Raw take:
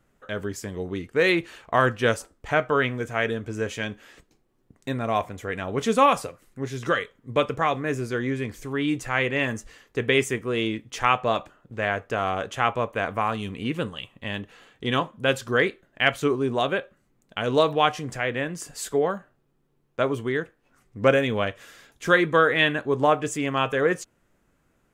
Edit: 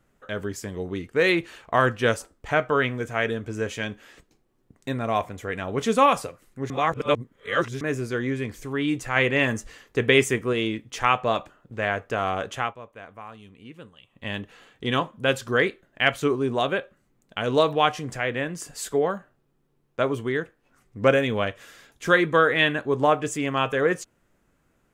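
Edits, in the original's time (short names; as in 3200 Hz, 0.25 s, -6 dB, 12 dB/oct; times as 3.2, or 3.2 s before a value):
6.7–7.81 reverse
9.16–10.53 gain +3 dB
12.54–14.27 dip -16 dB, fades 0.21 s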